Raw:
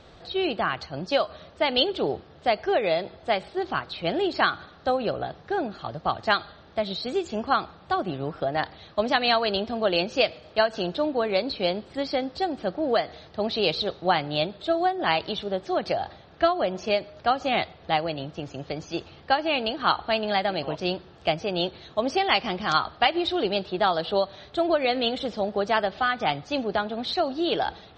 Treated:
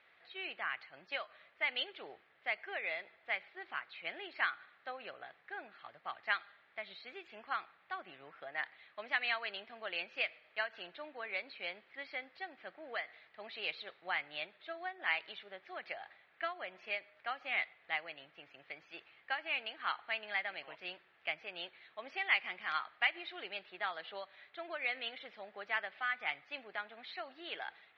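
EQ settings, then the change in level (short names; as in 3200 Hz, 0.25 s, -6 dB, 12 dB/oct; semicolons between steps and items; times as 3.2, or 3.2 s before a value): band-pass 2100 Hz, Q 3.8; air absorption 180 m; 0.0 dB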